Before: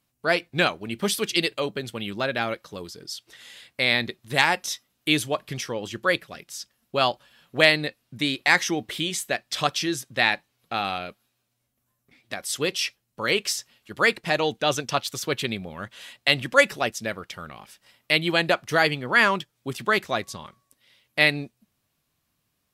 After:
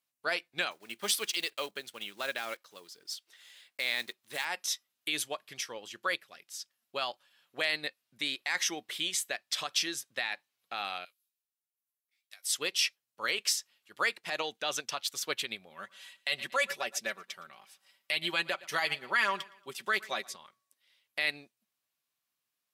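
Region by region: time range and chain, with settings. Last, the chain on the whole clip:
0:00.71–0:04.46: one scale factor per block 5 bits + parametric band 63 Hz −10.5 dB 1.7 octaves
0:11.05–0:12.45: first difference + double-tracking delay 17 ms −12 dB + one half of a high-frequency compander decoder only
0:15.70–0:20.36: comb filter 5.2 ms, depth 59% + repeating echo 115 ms, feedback 43%, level −21 dB
whole clip: brickwall limiter −15.5 dBFS; high-pass filter 1,100 Hz 6 dB per octave; expander for the loud parts 1.5 to 1, over −43 dBFS

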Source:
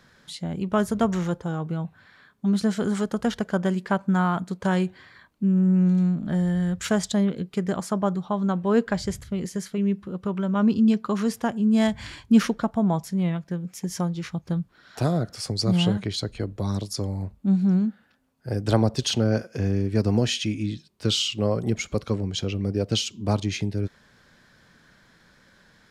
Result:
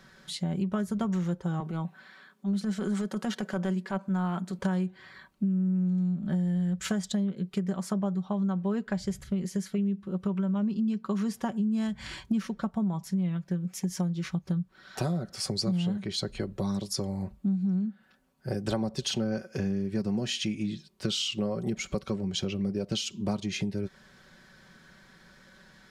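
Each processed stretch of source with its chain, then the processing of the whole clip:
0:01.60–0:04.59: high-pass filter 180 Hz 24 dB per octave + transient designer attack −10 dB, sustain +1 dB
whole clip: comb filter 5.3 ms, depth 51%; dynamic equaliser 190 Hz, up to +5 dB, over −28 dBFS, Q 3.2; downward compressor 6 to 1, threshold −27 dBFS

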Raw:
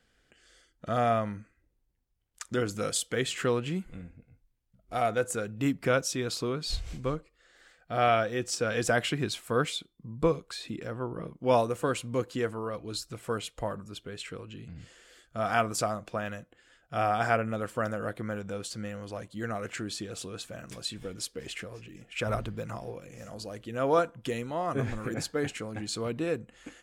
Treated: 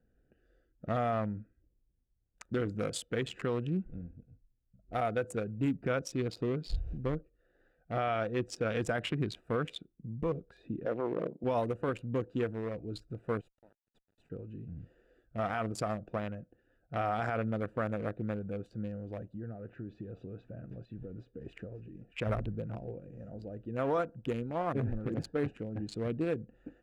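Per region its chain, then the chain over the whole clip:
0:10.85–0:11.44: high-pass filter 200 Hz + parametric band 570 Hz +10.5 dB 2 octaves
0:13.41–0:14.30: first difference + centre clipping without the shift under −48 dBFS + tube saturation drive 35 dB, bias 0.25
0:19.34–0:21.41: low-pass filter 3,800 Hz + downward compressor 3 to 1, threshold −39 dBFS + parametric band 120 Hz +5 dB 0.22 octaves
whole clip: adaptive Wiener filter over 41 samples; bass and treble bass +1 dB, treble −9 dB; brickwall limiter −22.5 dBFS

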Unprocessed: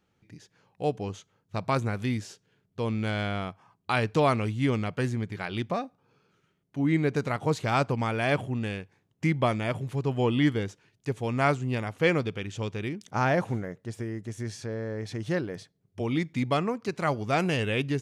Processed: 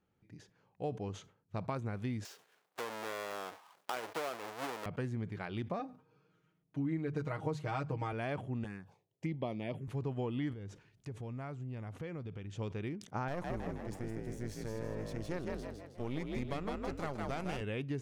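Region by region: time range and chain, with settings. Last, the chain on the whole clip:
0:02.25–0:04.86: each half-wave held at its own peak + high-pass filter 580 Hz + one half of a high-frequency compander encoder only
0:05.79–0:08.13: mains-hum notches 50/100/150/200/250 Hz + comb filter 6.4 ms, depth 87%
0:08.64–0:09.88: high-pass filter 150 Hz + phaser swept by the level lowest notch 200 Hz, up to 1,500 Hz, full sweep at −24.5 dBFS
0:10.53–0:12.57: low-shelf EQ 150 Hz +10.5 dB + downward compressor 4 to 1, threshold −36 dBFS + one half of a high-frequency compander encoder only
0:13.28–0:17.61: gain on one half-wave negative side −12 dB + high-shelf EQ 4,600 Hz +9.5 dB + echo with shifted repeats 159 ms, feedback 43%, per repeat +46 Hz, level −4 dB
whole clip: downward compressor, threshold −27 dBFS; high-shelf EQ 2,300 Hz −9 dB; level that may fall only so fast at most 140 dB per second; level −5.5 dB

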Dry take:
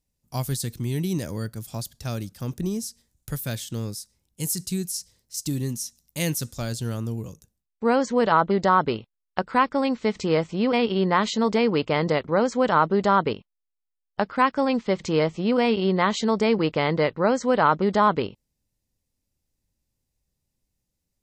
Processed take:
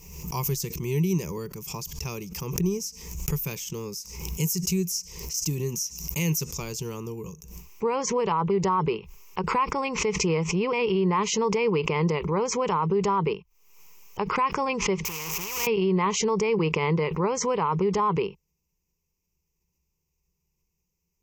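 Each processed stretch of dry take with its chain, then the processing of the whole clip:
0:15.05–0:15.67: converter with a step at zero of −24.5 dBFS + downward compressor 10 to 1, threshold −20 dBFS + every bin compressed towards the loudest bin 4 to 1
whole clip: EQ curve with evenly spaced ripples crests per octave 0.77, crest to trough 16 dB; brickwall limiter −13.5 dBFS; background raised ahead of every attack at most 58 dB per second; level −3 dB

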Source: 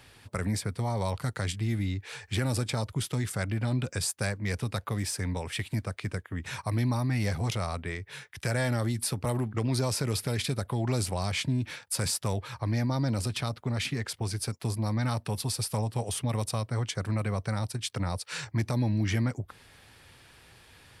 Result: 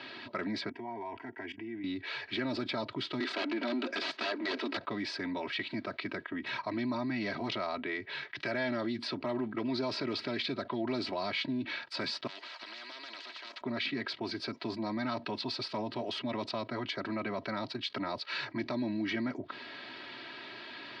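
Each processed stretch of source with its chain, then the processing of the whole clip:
0:00.69–0:01.84: high-shelf EQ 3,900 Hz −11 dB + output level in coarse steps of 19 dB + phaser with its sweep stopped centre 830 Hz, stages 8
0:03.20–0:04.77: Butterworth high-pass 250 Hz 48 dB per octave + power curve on the samples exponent 0.7 + wrap-around overflow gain 25 dB
0:12.27–0:13.61: high-pass filter 1,200 Hz 24 dB per octave + downward compressor 4 to 1, threshold −49 dBFS + every bin compressed towards the loudest bin 10 to 1
whole clip: Chebyshev band-pass filter 150–4,400 Hz, order 4; comb filter 3.1 ms, depth 89%; envelope flattener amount 50%; level −5.5 dB

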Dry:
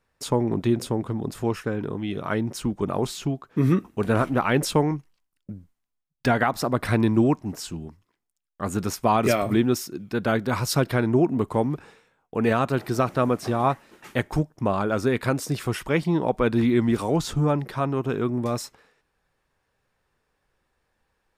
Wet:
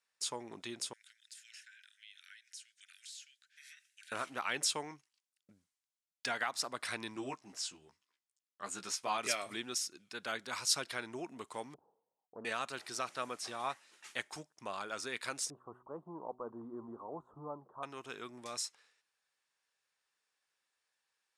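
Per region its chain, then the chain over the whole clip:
0:00.93–0:04.12: Butterworth high-pass 1,500 Hz 96 dB per octave + downward compressor 3 to 1, threshold −47 dBFS
0:07.14–0:09.18: high-shelf EQ 8,400 Hz −8.5 dB + double-tracking delay 15 ms −4 dB
0:11.74–0:12.45: Butterworth low-pass 910 Hz 48 dB per octave + highs frequency-modulated by the lows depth 0.39 ms
0:15.50–0:17.83: one scale factor per block 5 bits + elliptic low-pass filter 1,100 Hz, stop band 50 dB + hum removal 124.7 Hz, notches 3
whole clip: Bessel low-pass filter 6,600 Hz, order 8; first difference; level +2.5 dB

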